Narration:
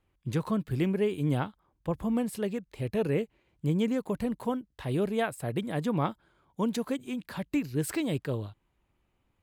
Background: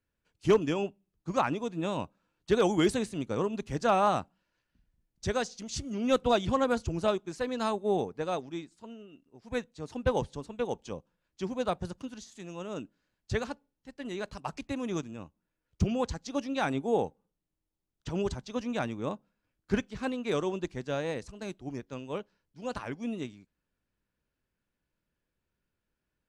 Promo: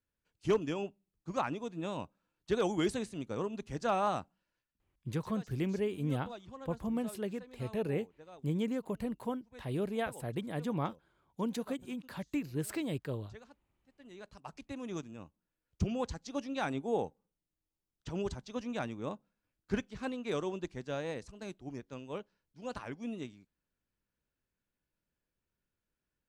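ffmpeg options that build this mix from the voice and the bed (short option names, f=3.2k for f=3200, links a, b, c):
-filter_complex "[0:a]adelay=4800,volume=-6dB[a];[1:a]volume=10dB,afade=t=out:st=4.51:d=0.27:silence=0.177828,afade=t=in:st=13.85:d=1.39:silence=0.158489[b];[a][b]amix=inputs=2:normalize=0"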